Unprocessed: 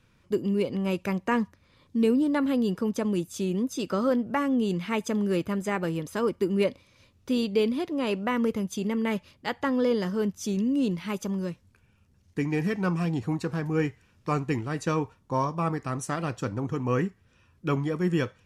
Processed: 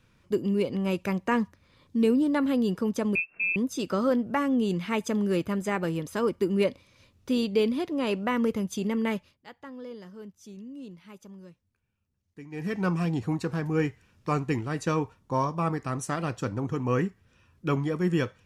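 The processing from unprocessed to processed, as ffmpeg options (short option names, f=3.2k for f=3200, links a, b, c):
-filter_complex "[0:a]asettb=1/sr,asplit=3[a][b][c];[a]atrim=end=3.154[d];[b]atrim=start=3.15:end=3.56,asetpts=PTS-STARTPTS,afade=t=in:d=0.004:c=qsin,afade=t=out:st=0.406:d=0.004:c=qsin,lowpass=f=2.4k:t=q:w=0.5098,lowpass=f=2.4k:t=q:w=0.6013,lowpass=f=2.4k:t=q:w=0.9,lowpass=f=2.4k:t=q:w=2.563,afreqshift=-2800[e];[c]atrim=start=3.556[f];[d][e]acrossfade=d=0.004:c1=hsin:c2=qsin[g];[g][f]acrossfade=d=0.004:c1=qsin:c2=hsin,asplit=3[h][i][j];[h]atrim=end=9.38,asetpts=PTS-STARTPTS,afade=t=out:st=9.08:d=0.3:silence=0.149624[k];[i]atrim=start=9.38:end=12.5,asetpts=PTS-STARTPTS,volume=-16.5dB[l];[j]atrim=start=12.5,asetpts=PTS-STARTPTS,afade=t=in:d=0.3:silence=0.149624[m];[k][l][m]concat=n=3:v=0:a=1"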